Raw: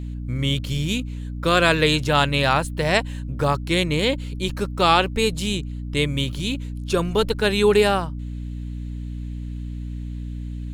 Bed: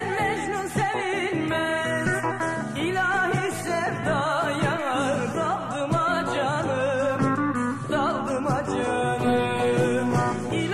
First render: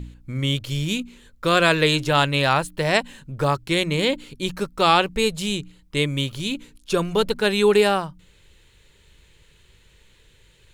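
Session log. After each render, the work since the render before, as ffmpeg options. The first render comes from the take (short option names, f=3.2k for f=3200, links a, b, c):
-af "bandreject=f=60:t=h:w=4,bandreject=f=120:t=h:w=4,bandreject=f=180:t=h:w=4,bandreject=f=240:t=h:w=4,bandreject=f=300:t=h:w=4"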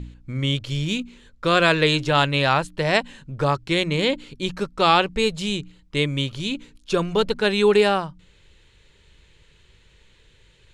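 -af "lowpass=6.7k"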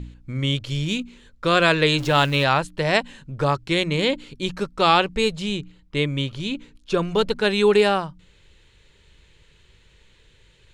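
-filter_complex "[0:a]asettb=1/sr,asplit=3[a][b][c];[a]atrim=end=1.984[d];[b]atrim=start=1.98:end=2.44,asetpts=PTS-STARTPTS,afade=t=in:d=0.004:c=qsin,afade=t=out:st=0.456:d=0.004:c=qsin,aeval=exprs='val(0)+0.5*0.0237*sgn(val(0))':c=same[e];[c]atrim=start=2.436[f];[d][e]acrossfade=d=0.004:c1=hsin:c2=qsin[g];[g][f]acrossfade=d=0.004:c1=qsin:c2=hsin,asettb=1/sr,asplit=3[h][i][j];[h]atrim=end=5.354[k];[i]atrim=start=5.35:end=7.03,asetpts=PTS-STARTPTS,afade=t=in:d=0.004:c=qsin,afade=t=out:st=1.676:d=0.004:c=qsin,highshelf=f=5.1k:g=-7.5[l];[j]atrim=start=7.026[m];[k][l]acrossfade=d=0.004:c1=hsin:c2=qsin[n];[n][m]acrossfade=d=0.004:c1=qsin:c2=hsin"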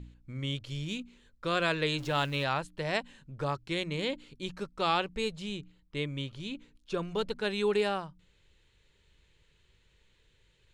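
-af "volume=-11.5dB"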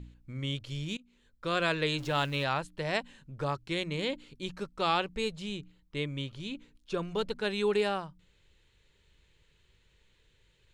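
-filter_complex "[0:a]asplit=2[a][b];[a]atrim=end=0.97,asetpts=PTS-STARTPTS,afade=t=out:st=0.966:d=0.004:c=hsin:silence=0.0668344[c];[b]atrim=start=0.97,asetpts=PTS-STARTPTS,afade=t=in:d=0.74:c=qsin:silence=0.0668344[d];[c][d]concat=n=2:v=0:a=1"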